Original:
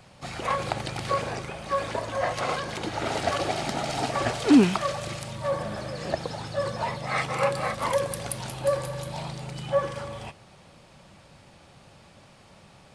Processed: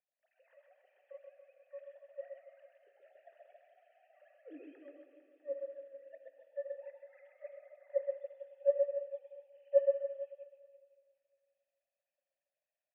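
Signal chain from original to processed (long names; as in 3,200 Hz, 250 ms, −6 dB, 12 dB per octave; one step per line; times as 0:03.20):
three sine waves on the formant tracks
formant filter e
reverse bouncing-ball delay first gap 130 ms, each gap 1.15×, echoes 5
on a send at −7 dB: convolution reverb RT60 2.2 s, pre-delay 6 ms
on the sum: expander for the loud parts 1.5 to 1, over −41 dBFS
level −8 dB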